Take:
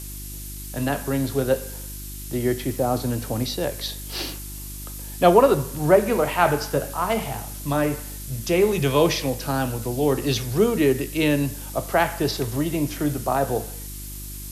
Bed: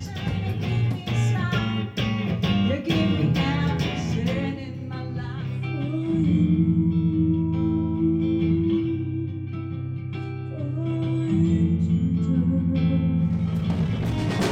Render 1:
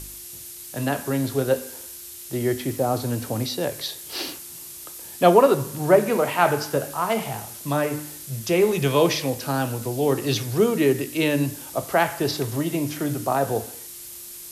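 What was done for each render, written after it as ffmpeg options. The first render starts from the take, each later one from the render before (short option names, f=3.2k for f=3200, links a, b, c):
-af "bandreject=f=50:t=h:w=4,bandreject=f=100:t=h:w=4,bandreject=f=150:t=h:w=4,bandreject=f=200:t=h:w=4,bandreject=f=250:t=h:w=4,bandreject=f=300:t=h:w=4"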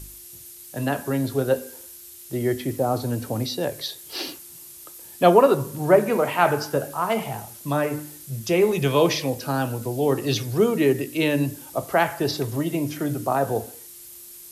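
-af "afftdn=nr=6:nf=-39"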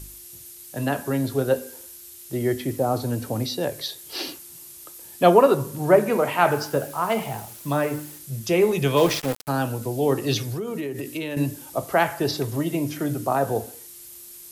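-filter_complex "[0:a]asettb=1/sr,asplit=3[a][b][c];[a]atrim=end=6.514[d];[b]atrim=start=6.51:end=8.19,asetpts=PTS-STARTPTS,afade=t=in:d=0.004:c=qsin,afade=t=out:st=1.676:d=0.004:c=qsin,acrusher=bits=6:mix=0:aa=0.5[e];[c]atrim=start=8.186[f];[d][e]acrossfade=d=0.004:c1=hsin:c2=qsin[g];[g][f]acrossfade=d=0.004:c1=qsin:c2=hsin,asplit=3[h][i][j];[h]afade=t=out:st=8.96:d=0.02[k];[i]aeval=exprs='val(0)*gte(abs(val(0)),0.0501)':c=same,afade=t=in:st=8.96:d=0.02,afade=t=out:st=9.47:d=0.02[l];[j]afade=t=in:st=9.47:d=0.02[m];[k][l][m]amix=inputs=3:normalize=0,asettb=1/sr,asplit=3[n][o][p];[n]atrim=end=10.484[q];[o]atrim=start=10.48:end=11.37,asetpts=PTS-STARTPTS,afade=t=in:d=0.004:c=qsin,afade=t=out:st=0.886:d=0.004:c=qsin,acompressor=threshold=-25dB:ratio=16:attack=3.2:release=140:knee=1:detection=peak[r];[p]atrim=start=11.366[s];[q][r]acrossfade=d=0.004:c1=hsin:c2=qsin[t];[t][s]acrossfade=d=0.004:c1=qsin:c2=hsin"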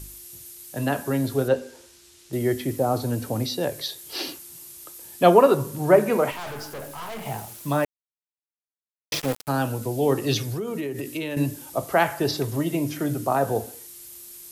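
-filter_complex "[0:a]asettb=1/sr,asplit=3[a][b][c];[a]atrim=end=1.484[d];[b]atrim=start=1.48:end=2.33,asetpts=PTS-STARTPTS,afade=t=in:d=0.004:c=qsin,afade=t=out:st=0.846:d=0.004:c=qsin,lowpass=5.8k[e];[c]atrim=start=2.326[f];[d][e]acrossfade=d=0.004:c1=hsin:c2=qsin[g];[g][f]acrossfade=d=0.004:c1=qsin:c2=hsin,asettb=1/sr,asplit=3[h][i][j];[h]atrim=end=6.314[k];[i]atrim=start=6.31:end=7.26,asetpts=PTS-STARTPTS,afade=t=in:d=0.004:c=qsin,afade=t=out:st=0.946:d=0.004:c=qsin,aeval=exprs='(tanh(44.7*val(0)+0.4)-tanh(0.4))/44.7':c=same[l];[j]atrim=start=7.256[m];[k][l]acrossfade=d=0.004:c1=hsin:c2=qsin[n];[n][m]acrossfade=d=0.004:c1=qsin:c2=hsin,asplit=3[o][p][q];[o]atrim=end=7.85,asetpts=PTS-STARTPTS,afade=t=out:st=7.846:d=0.004:c=hsin[r];[p]atrim=start=7.85:end=9.12,asetpts=PTS-STARTPTS,volume=0[s];[q]atrim=start=9.12,asetpts=PTS-STARTPTS,afade=t=in:d=0.004:c=hsin[t];[r][s][t]concat=n=3:v=0:a=1"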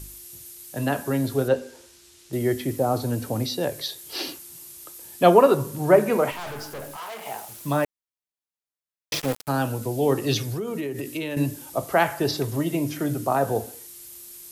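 -filter_complex "[0:a]asettb=1/sr,asplit=3[a][b][c];[a]atrim=end=6.964[d];[b]atrim=start=6.96:end=7.49,asetpts=PTS-STARTPTS,afade=t=in:d=0.004:c=qsin,afade=t=out:st=0.526:d=0.004:c=qsin,highpass=420[e];[c]atrim=start=7.486[f];[d][e]acrossfade=d=0.004:c1=hsin:c2=qsin[g];[g][f]acrossfade=d=0.004:c1=qsin:c2=hsin"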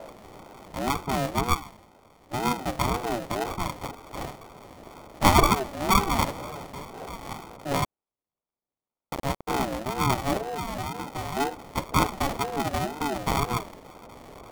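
-af "acrusher=samples=39:mix=1:aa=0.000001,aeval=exprs='val(0)*sin(2*PI*510*n/s+510*0.2/2*sin(2*PI*2*n/s))':c=same"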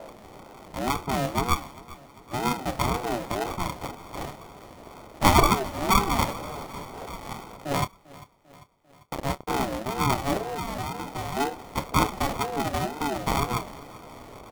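-filter_complex "[0:a]asplit=2[a][b];[b]adelay=28,volume=-13.5dB[c];[a][c]amix=inputs=2:normalize=0,aecho=1:1:396|792|1188|1584|1980:0.1|0.059|0.0348|0.0205|0.0121"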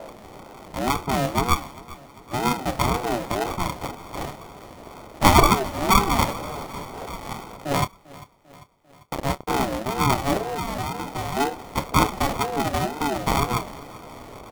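-af "volume=3.5dB,alimiter=limit=-1dB:level=0:latency=1"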